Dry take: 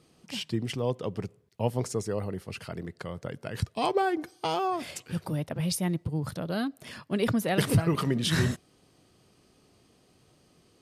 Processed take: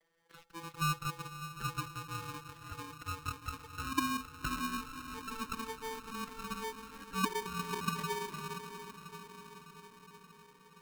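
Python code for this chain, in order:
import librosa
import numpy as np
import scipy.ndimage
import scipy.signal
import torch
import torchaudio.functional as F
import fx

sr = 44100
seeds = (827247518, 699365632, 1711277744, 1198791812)

p1 = fx.vocoder_glide(x, sr, note=52, semitones=10)
p2 = fx.high_shelf(p1, sr, hz=3600.0, db=12.0)
p3 = fx.over_compress(p2, sr, threshold_db=-34.0, ratio=-0.5)
p4 = p2 + (p3 * librosa.db_to_amplitude(0.5))
p5 = fx.auto_wah(p4, sr, base_hz=350.0, top_hz=1200.0, q=7.0, full_db=-20.5, direction='down')
p6 = p5 + fx.echo_diffused(p5, sr, ms=583, feedback_pct=62, wet_db=-10.5, dry=0)
p7 = p6 * np.sign(np.sin(2.0 * np.pi * 670.0 * np.arange(len(p6)) / sr))
y = p7 * librosa.db_to_amplitude(-1.0)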